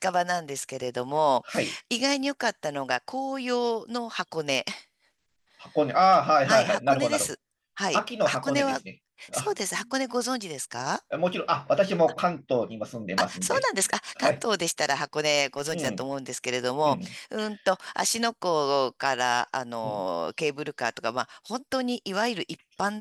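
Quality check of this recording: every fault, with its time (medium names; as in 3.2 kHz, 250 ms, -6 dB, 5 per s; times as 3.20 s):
15.57–16.16 s: clipped -21 dBFS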